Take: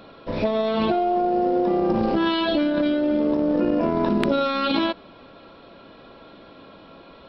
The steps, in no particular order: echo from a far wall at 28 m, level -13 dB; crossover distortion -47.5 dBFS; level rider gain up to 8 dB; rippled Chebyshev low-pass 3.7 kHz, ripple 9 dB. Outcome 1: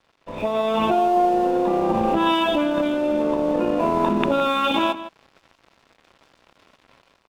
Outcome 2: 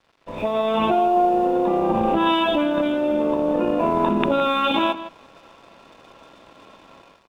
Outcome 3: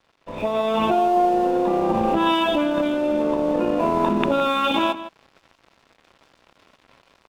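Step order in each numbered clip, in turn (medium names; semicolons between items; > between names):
rippled Chebyshev low-pass > crossover distortion > level rider > echo from a far wall; rippled Chebyshev low-pass > level rider > crossover distortion > echo from a far wall; rippled Chebyshev low-pass > crossover distortion > echo from a far wall > level rider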